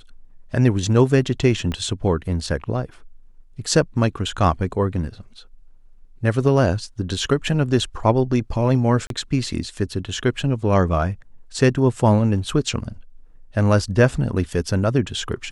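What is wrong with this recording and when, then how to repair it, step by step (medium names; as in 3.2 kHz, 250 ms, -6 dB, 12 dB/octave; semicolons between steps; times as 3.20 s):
1.72 s: pop -15 dBFS
9.07–9.10 s: dropout 32 ms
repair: de-click; interpolate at 9.07 s, 32 ms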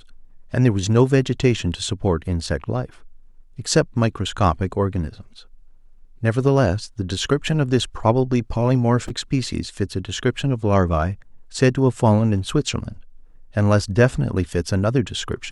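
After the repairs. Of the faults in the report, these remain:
1.72 s: pop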